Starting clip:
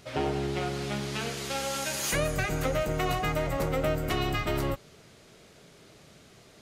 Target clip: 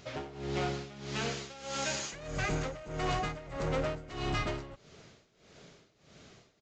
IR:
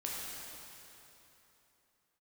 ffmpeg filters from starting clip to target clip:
-af "aresample=16000,volume=22.4,asoftclip=hard,volume=0.0447,aresample=44100,tremolo=f=1.6:d=0.86"

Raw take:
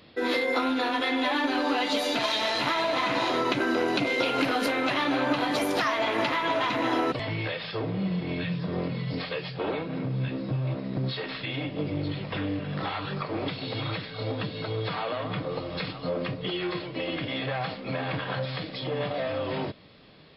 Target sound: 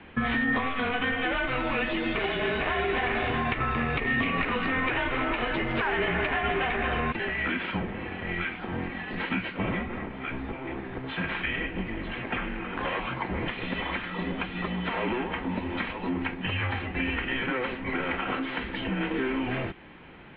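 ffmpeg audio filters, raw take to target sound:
-filter_complex "[0:a]acrossover=split=560|1900[s0][s1][s2];[s0]acompressor=threshold=0.0126:ratio=4[s3];[s1]acompressor=threshold=0.00631:ratio=4[s4];[s2]acompressor=threshold=0.0178:ratio=4[s5];[s3][s4][s5]amix=inputs=3:normalize=0,highpass=f=340:t=q:w=0.5412,highpass=f=340:t=q:w=1.307,lowpass=f=2900:t=q:w=0.5176,lowpass=f=2900:t=q:w=0.7071,lowpass=f=2900:t=q:w=1.932,afreqshift=-260,volume=2.82"

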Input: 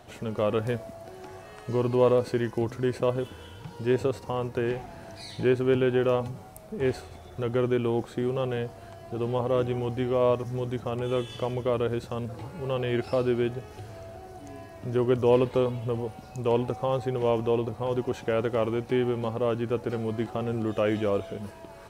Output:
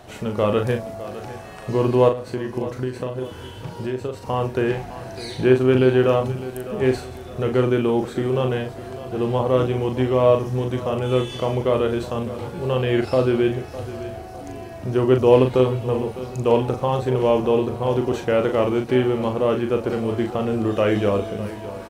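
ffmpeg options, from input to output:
-filter_complex "[0:a]asplit=3[s0][s1][s2];[s0]afade=t=out:st=2.08:d=0.02[s3];[s1]acompressor=threshold=0.0282:ratio=6,afade=t=in:st=2.08:d=0.02,afade=t=out:st=4.23:d=0.02[s4];[s2]afade=t=in:st=4.23:d=0.02[s5];[s3][s4][s5]amix=inputs=3:normalize=0,asplit=2[s6][s7];[s7]adelay=39,volume=0.501[s8];[s6][s8]amix=inputs=2:normalize=0,aecho=1:1:606|1212|1818|2424:0.178|0.0694|0.027|0.0105,volume=2"

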